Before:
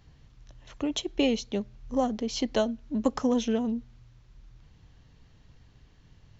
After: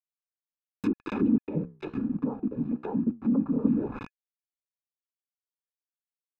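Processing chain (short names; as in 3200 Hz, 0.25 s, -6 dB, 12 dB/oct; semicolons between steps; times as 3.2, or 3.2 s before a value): bands offset in time lows, highs 0.28 s, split 340 Hz; noise vocoder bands 12; treble ducked by the level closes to 1700 Hz, closed at -27 dBFS; sample gate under -37.5 dBFS; treble ducked by the level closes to 490 Hz, closed at -29 dBFS; comb 0.8 ms, depth 78%; 1.43–3.65 flange 1.2 Hz, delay 9.4 ms, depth 8.2 ms, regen -77%; small resonant body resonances 1700/2500 Hz, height 12 dB; gain +4.5 dB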